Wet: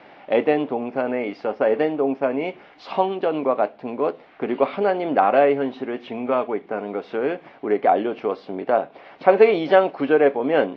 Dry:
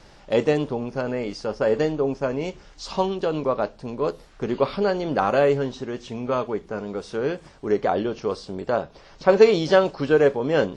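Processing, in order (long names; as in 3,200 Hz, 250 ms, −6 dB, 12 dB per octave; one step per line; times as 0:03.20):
in parallel at −2 dB: downward compressor, threshold −31 dBFS, peak gain reduction 21 dB
on the sum: loudspeaker in its box 260–3,100 Hz, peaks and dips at 270 Hz +6 dB, 720 Hz +8 dB, 2,200 Hz +6 dB
level −1 dB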